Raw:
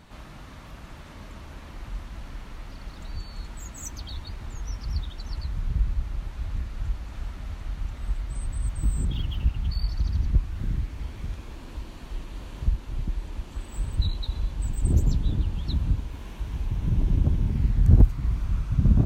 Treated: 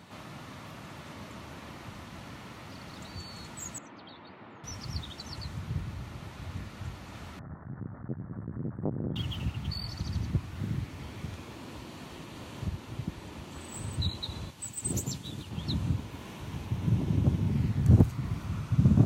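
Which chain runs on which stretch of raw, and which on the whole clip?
3.78–4.64 s: band-pass 250–7500 Hz + distance through air 430 m
7.39–9.16 s: elliptic low-pass 1.7 kHz + transformer saturation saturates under 330 Hz
14.50–15.51 s: tilt EQ +2.5 dB/octave + upward expansion, over -40 dBFS
whole clip: high-pass 98 Hz 24 dB/octave; band-stop 1.6 kHz, Q 22; dynamic bell 7.5 kHz, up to +4 dB, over -58 dBFS, Q 1.3; trim +1.5 dB

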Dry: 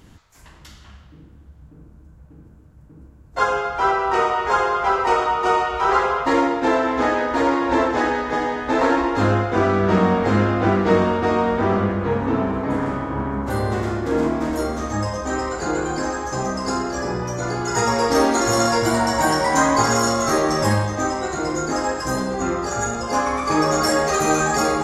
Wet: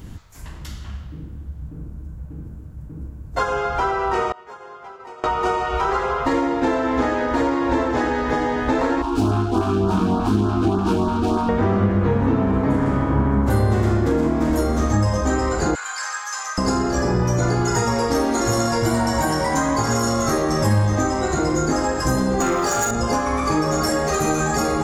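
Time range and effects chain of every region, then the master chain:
4.32–5.24 s: expander -10 dBFS + high-pass 150 Hz + compression 12:1, threshold -39 dBFS
9.02–11.49 s: self-modulated delay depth 0.32 ms + LFO notch saw up 3.4 Hz 260–2700 Hz + static phaser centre 530 Hz, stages 6
15.75–16.58 s: high-pass 1.2 kHz 24 dB/octave + upward compressor, threshold -38 dBFS + loudspeaker Doppler distortion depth 0.22 ms
22.40–22.91 s: high-pass 560 Hz 6 dB/octave + waveshaping leveller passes 2
whole clip: treble shelf 11 kHz +8 dB; compression, threshold -23 dBFS; bass shelf 250 Hz +10 dB; trim +3.5 dB

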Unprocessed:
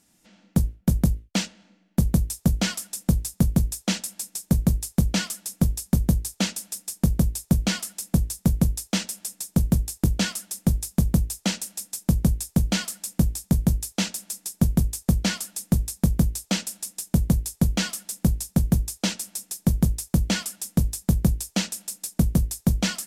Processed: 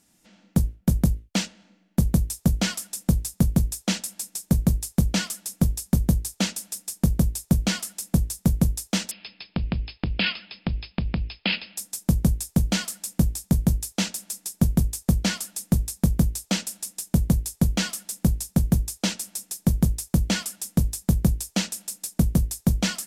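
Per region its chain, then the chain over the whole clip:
9.11–11.77 s: compression 4:1, threshold -22 dBFS + brick-wall FIR low-pass 5.2 kHz + peaking EQ 2.6 kHz +14.5 dB 0.84 oct
whole clip: none

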